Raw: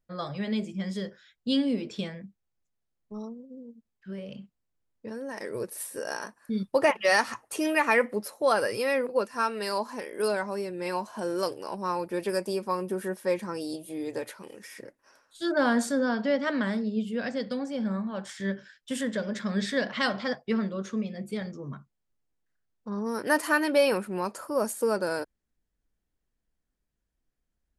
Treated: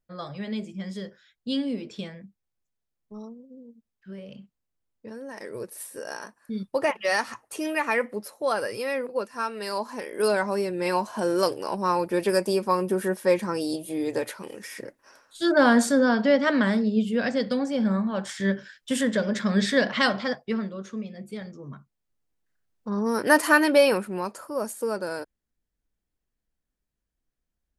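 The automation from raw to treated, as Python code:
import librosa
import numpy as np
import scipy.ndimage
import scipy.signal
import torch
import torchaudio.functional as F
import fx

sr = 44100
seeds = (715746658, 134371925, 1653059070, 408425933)

y = fx.gain(x, sr, db=fx.line((9.52, -2.0), (10.48, 6.0), (19.94, 6.0), (20.79, -3.0), (21.5, -3.0), (23.11, 6.0), (23.61, 6.0), (24.49, -2.0)))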